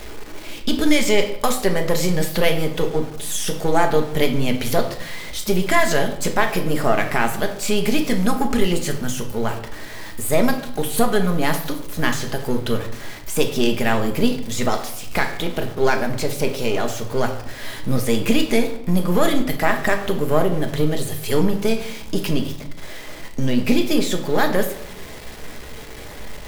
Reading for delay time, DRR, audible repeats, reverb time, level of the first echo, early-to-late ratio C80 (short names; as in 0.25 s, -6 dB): none, 4.5 dB, none, 0.75 s, none, 12.5 dB